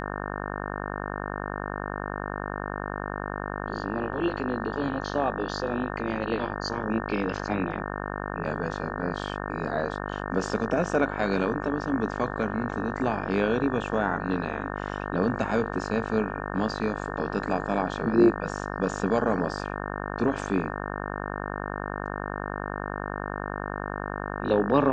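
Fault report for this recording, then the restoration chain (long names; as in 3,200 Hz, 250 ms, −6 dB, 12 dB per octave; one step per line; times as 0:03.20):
mains buzz 50 Hz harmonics 36 −33 dBFS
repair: hum removal 50 Hz, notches 36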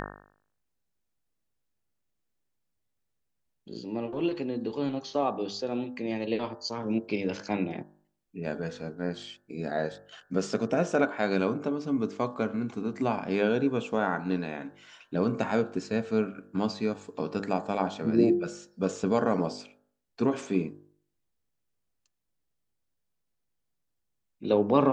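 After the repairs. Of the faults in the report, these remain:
none of them is left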